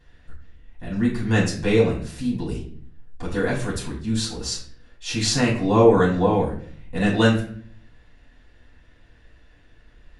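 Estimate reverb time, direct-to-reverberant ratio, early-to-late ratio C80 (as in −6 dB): 0.55 s, −7.0 dB, 11.0 dB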